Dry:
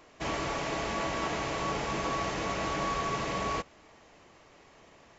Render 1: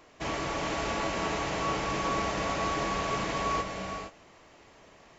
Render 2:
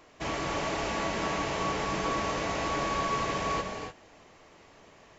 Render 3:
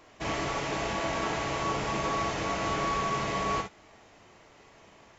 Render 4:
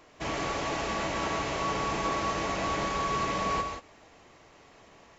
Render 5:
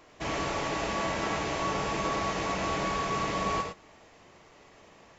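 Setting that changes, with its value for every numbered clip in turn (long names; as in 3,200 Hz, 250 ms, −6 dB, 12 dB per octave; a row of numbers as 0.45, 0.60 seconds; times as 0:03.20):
reverb whose tail is shaped and stops, gate: 500, 320, 80, 200, 130 milliseconds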